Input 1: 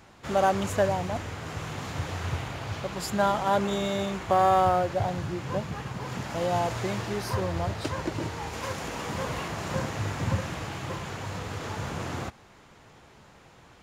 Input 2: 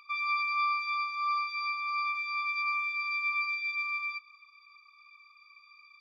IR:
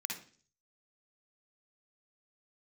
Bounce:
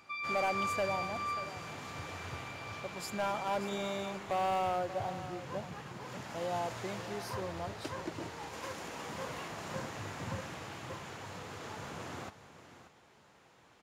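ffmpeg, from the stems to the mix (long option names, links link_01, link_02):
-filter_complex "[0:a]highpass=frequency=200:poles=1,asoftclip=type=hard:threshold=-19.5dB,volume=-8dB,asplit=2[link_01][link_02];[link_02]volume=-13dB[link_03];[1:a]volume=-6.5dB,afade=type=out:start_time=1.33:duration=0.25:silence=0.266073[link_04];[link_03]aecho=0:1:585:1[link_05];[link_01][link_04][link_05]amix=inputs=3:normalize=0"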